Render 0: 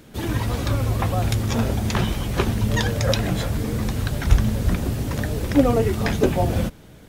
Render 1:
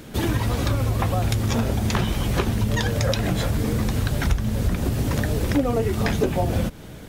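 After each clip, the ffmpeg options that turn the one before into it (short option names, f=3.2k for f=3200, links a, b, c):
-af "acompressor=threshold=-26dB:ratio=4,volume=6.5dB"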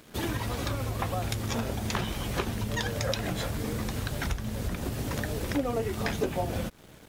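-af "lowshelf=f=300:g=-6,aeval=exprs='sgn(val(0))*max(abs(val(0))-0.00422,0)':c=same,volume=-4.5dB"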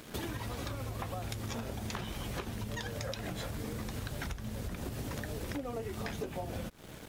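-af "acompressor=threshold=-41dB:ratio=4,volume=3.5dB"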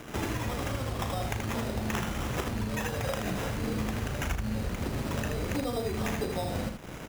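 -filter_complex "[0:a]acrusher=samples=10:mix=1:aa=0.000001,asplit=2[a][b];[b]aecho=0:1:37|79:0.335|0.562[c];[a][c]amix=inputs=2:normalize=0,volume=5.5dB"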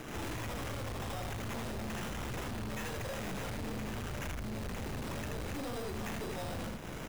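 -af "aeval=exprs='(tanh(112*val(0)+0.4)-tanh(0.4))/112':c=same,volume=3.5dB"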